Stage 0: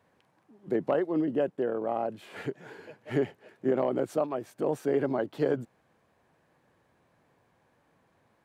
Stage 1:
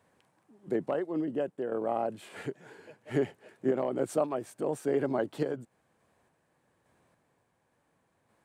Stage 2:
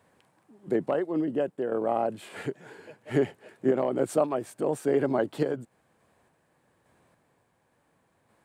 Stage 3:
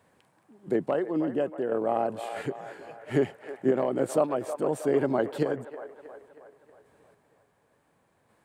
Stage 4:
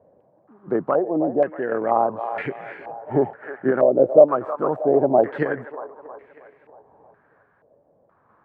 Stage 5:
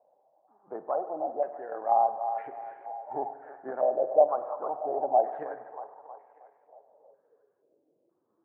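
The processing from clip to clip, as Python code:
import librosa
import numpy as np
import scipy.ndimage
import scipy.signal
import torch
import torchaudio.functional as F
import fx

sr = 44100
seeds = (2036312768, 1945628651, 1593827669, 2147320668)

y1 = fx.peak_eq(x, sr, hz=8600.0, db=9.0, octaves=0.63)
y1 = fx.tremolo_random(y1, sr, seeds[0], hz=3.5, depth_pct=55)
y2 = fx.peak_eq(y1, sr, hz=6000.0, db=-2.5, octaves=0.25)
y2 = y2 * 10.0 ** (4.0 / 20.0)
y3 = fx.echo_wet_bandpass(y2, sr, ms=317, feedback_pct=53, hz=1000.0, wet_db=-9.0)
y4 = fx.filter_held_lowpass(y3, sr, hz=2.1, low_hz=590.0, high_hz=2200.0)
y4 = y4 * 10.0 ** (3.0 / 20.0)
y5 = fx.spec_quant(y4, sr, step_db=15)
y5 = fx.filter_sweep_bandpass(y5, sr, from_hz=780.0, to_hz=340.0, start_s=6.54, end_s=7.74, q=5.1)
y5 = fx.rev_spring(y5, sr, rt60_s=1.6, pass_ms=(47,), chirp_ms=45, drr_db=11.5)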